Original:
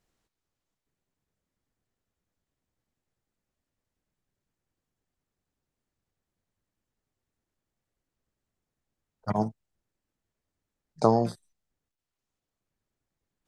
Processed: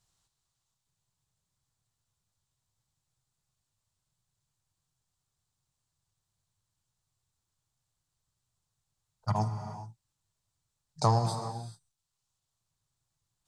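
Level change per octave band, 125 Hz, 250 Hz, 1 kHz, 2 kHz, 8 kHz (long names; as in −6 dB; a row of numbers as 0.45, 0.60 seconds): +4.5, −8.5, −1.0, −1.0, +7.5 decibels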